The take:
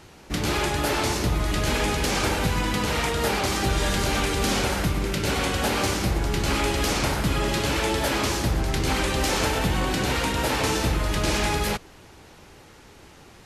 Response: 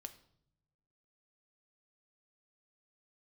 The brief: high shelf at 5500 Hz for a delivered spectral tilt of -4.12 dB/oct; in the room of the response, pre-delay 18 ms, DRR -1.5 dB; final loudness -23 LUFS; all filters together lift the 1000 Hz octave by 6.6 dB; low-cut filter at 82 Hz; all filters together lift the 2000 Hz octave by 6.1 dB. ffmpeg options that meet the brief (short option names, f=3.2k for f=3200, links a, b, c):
-filter_complex "[0:a]highpass=82,equalizer=f=1k:t=o:g=7,equalizer=f=2k:t=o:g=6.5,highshelf=f=5.5k:g=-7.5,asplit=2[a][b];[1:a]atrim=start_sample=2205,adelay=18[c];[b][c]afir=irnorm=-1:irlink=0,volume=6.5dB[d];[a][d]amix=inputs=2:normalize=0,volume=-5.5dB"